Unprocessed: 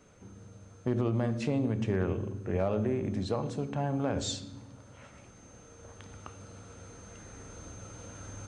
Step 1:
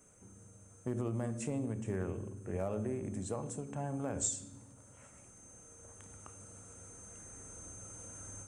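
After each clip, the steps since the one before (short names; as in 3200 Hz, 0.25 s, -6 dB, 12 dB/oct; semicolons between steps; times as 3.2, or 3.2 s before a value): resonant high shelf 6000 Hz +12.5 dB, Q 3; ending taper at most 120 dB/s; gain -7 dB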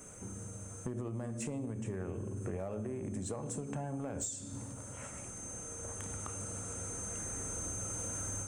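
compressor 16:1, threshold -46 dBFS, peak gain reduction 17.5 dB; soft clip -39.5 dBFS, distortion -23 dB; gain +12 dB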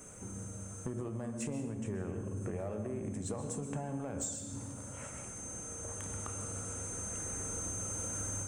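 reverb RT60 0.80 s, pre-delay 0.118 s, DRR 8.5 dB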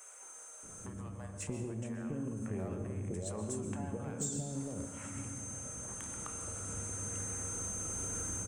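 bands offset in time highs, lows 0.63 s, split 610 Hz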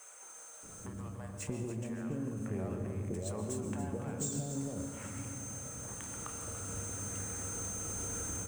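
median filter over 3 samples; lo-fi delay 0.286 s, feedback 35%, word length 10-bit, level -11 dB; gain +1 dB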